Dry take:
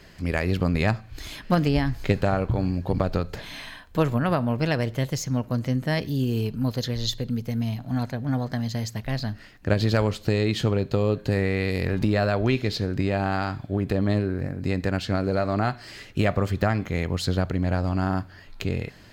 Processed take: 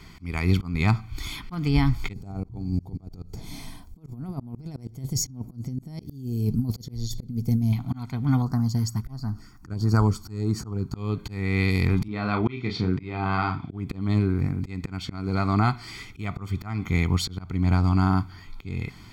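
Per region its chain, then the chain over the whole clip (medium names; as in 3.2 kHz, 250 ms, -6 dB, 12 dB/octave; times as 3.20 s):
2.13–7.73 s: compressor with a negative ratio -27 dBFS, ratio -0.5 + high-order bell 1.9 kHz -15.5 dB 2.3 oct
8.42–10.96 s: high-order bell 2.8 kHz -15 dB 1.2 oct + LFO notch sine 1.5 Hz 470–3400 Hz
12.08–13.71 s: band-pass 120–3400 Hz + doubling 33 ms -6 dB
whole clip: comb 0.9 ms, depth 88%; slow attack 319 ms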